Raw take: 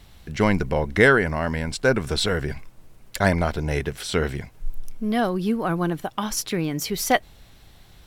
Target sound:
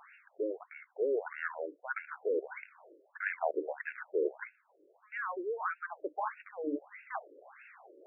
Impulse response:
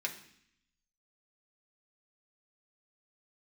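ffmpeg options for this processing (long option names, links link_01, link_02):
-af "bandreject=frequency=60:width_type=h:width=6,bandreject=frequency=120:width_type=h:width=6,bandreject=frequency=180:width_type=h:width=6,bandreject=frequency=240:width_type=h:width=6,bandreject=frequency=300:width_type=h:width=6,areverse,acompressor=threshold=-33dB:ratio=12,areverse,afftfilt=real='re*between(b*sr/1024,400*pow(2000/400,0.5+0.5*sin(2*PI*1.6*pts/sr))/1.41,400*pow(2000/400,0.5+0.5*sin(2*PI*1.6*pts/sr))*1.41)':imag='im*between(b*sr/1024,400*pow(2000/400,0.5+0.5*sin(2*PI*1.6*pts/sr))/1.41,400*pow(2000/400,0.5+0.5*sin(2*PI*1.6*pts/sr))*1.41)':win_size=1024:overlap=0.75,volume=9dB"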